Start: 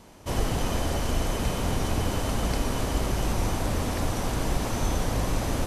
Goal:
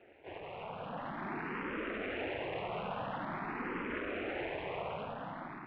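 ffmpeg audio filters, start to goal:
ffmpeg -i in.wav -filter_complex "[0:a]highpass=frequency=280:poles=1,afftfilt=real='hypot(re,im)*cos(2*PI*random(0))':imag='hypot(re,im)*sin(2*PI*random(1))':win_size=512:overlap=0.75,alimiter=level_in=9.5dB:limit=-24dB:level=0:latency=1:release=40,volume=-9.5dB,asplit=2[link_01][link_02];[link_02]asetrate=55563,aresample=44100,atempo=0.793701,volume=-9dB[link_03];[link_01][link_03]amix=inputs=2:normalize=0,tremolo=f=210:d=1,acrusher=samples=5:mix=1:aa=0.000001,dynaudnorm=framelen=340:gausssize=7:maxgain=14.5dB,asoftclip=type=tanh:threshold=-36dB,highpass=frequency=450:width_type=q:width=0.5412,highpass=frequency=450:width_type=q:width=1.307,lowpass=frequency=2900:width_type=q:width=0.5176,lowpass=frequency=2900:width_type=q:width=0.7071,lowpass=frequency=2900:width_type=q:width=1.932,afreqshift=-260,asplit=2[link_04][link_05];[link_05]afreqshift=0.47[link_06];[link_04][link_06]amix=inputs=2:normalize=1,volume=7dB" out.wav

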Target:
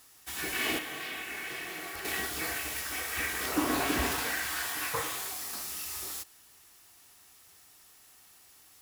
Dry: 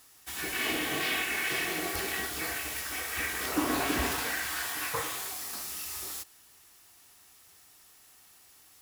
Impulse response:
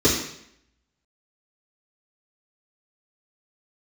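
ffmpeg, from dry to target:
-filter_complex "[0:a]asettb=1/sr,asplit=3[link_01][link_02][link_03];[link_01]atrim=end=0.784[link_04];[link_02]atrim=start=0.78:end=2.05,asetpts=PTS-STARTPTS,afade=type=in:duration=0.004:curve=qsin,afade=type=out:start_time=1.266:duration=0.004:curve=qsin,acrossover=split=400|900|2700[link_05][link_06][link_07][link_08];[link_05]acompressor=threshold=-52dB:ratio=4[link_09];[link_06]acompressor=threshold=-51dB:ratio=4[link_10];[link_07]acompressor=threshold=-41dB:ratio=4[link_11];[link_08]acompressor=threshold=-45dB:ratio=4[link_12];[link_09][link_10][link_11][link_12]amix=inputs=4:normalize=0[link_13];[link_03]atrim=start=2.046[link_14];[link_04][link_13]acrossfade=duration=0.004:curve1=hsin:curve2=qsin[link_15];[link_15][link_14]acrossfade=duration=0.004:curve1=qsin:curve2=hsin"

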